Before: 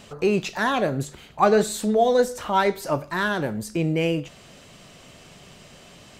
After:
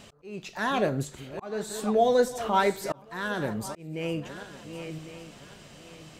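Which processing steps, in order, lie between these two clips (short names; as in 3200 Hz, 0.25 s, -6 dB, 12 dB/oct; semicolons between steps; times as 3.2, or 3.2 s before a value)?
regenerating reverse delay 0.554 s, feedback 50%, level -13.5 dB; auto swell 0.588 s; gain -3 dB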